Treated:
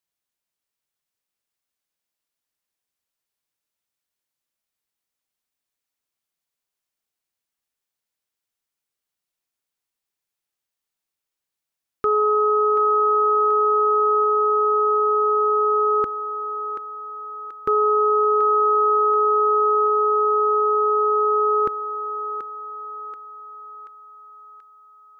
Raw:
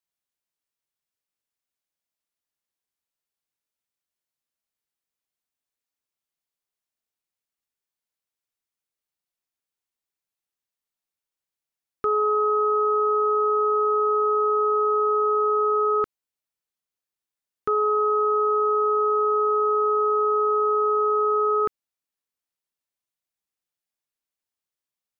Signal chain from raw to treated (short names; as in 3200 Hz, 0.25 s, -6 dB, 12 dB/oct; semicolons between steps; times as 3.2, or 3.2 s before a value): thinning echo 0.732 s, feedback 61%, high-pass 690 Hz, level -7 dB; gain +3 dB